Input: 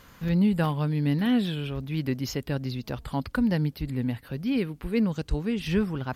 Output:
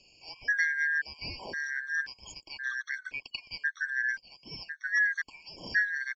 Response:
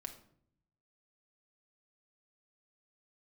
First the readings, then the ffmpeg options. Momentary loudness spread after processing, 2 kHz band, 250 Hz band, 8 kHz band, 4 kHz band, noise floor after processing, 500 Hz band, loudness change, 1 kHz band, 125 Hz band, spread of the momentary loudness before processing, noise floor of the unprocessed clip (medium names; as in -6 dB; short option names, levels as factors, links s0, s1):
15 LU, +12.5 dB, -31.5 dB, -2.0 dB, -3.0 dB, -63 dBFS, -21.5 dB, -3.5 dB, -15.0 dB, -29.0 dB, 8 LU, -53 dBFS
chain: -filter_complex "[0:a]afftfilt=real='real(if(lt(b,272),68*(eq(floor(b/68),0)*2+eq(floor(b/68),1)*0+eq(floor(b/68),2)*3+eq(floor(b/68),3)*1)+mod(b,68),b),0)':imag='imag(if(lt(b,272),68*(eq(floor(b/68),0)*2+eq(floor(b/68),1)*0+eq(floor(b/68),2)*3+eq(floor(b/68),3)*1)+mod(b,68),b),0)':win_size=2048:overlap=0.75,acrossover=split=710|2400[s0][s1][s2];[s1]aeval=exprs='sgn(val(0))*max(abs(val(0))-0.00266,0)':c=same[s3];[s0][s3][s2]amix=inputs=3:normalize=0,aresample=16000,aresample=44100,afftfilt=real='re*gt(sin(2*PI*0.95*pts/sr)*(1-2*mod(floor(b*sr/1024/1100),2)),0)':imag='im*gt(sin(2*PI*0.95*pts/sr)*(1-2*mod(floor(b*sr/1024/1100),2)),0)':win_size=1024:overlap=0.75,volume=0.794"